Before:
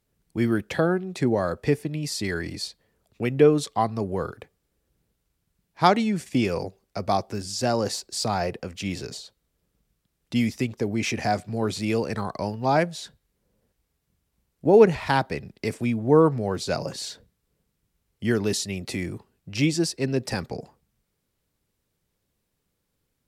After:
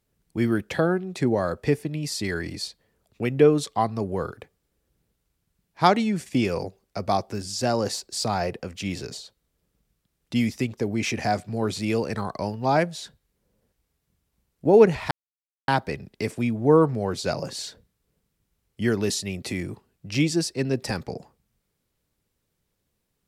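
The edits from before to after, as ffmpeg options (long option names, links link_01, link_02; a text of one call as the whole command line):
ffmpeg -i in.wav -filter_complex "[0:a]asplit=2[link_01][link_02];[link_01]atrim=end=15.11,asetpts=PTS-STARTPTS,afade=type=out:start_time=15.106:duration=0.004:curve=hsin,apad=pad_dur=0.57[link_03];[link_02]atrim=start=15.11,asetpts=PTS-STARTPTS,afade=type=in:duration=0.004:curve=hsin[link_04];[link_03][link_04]concat=n=2:v=0:a=1" out.wav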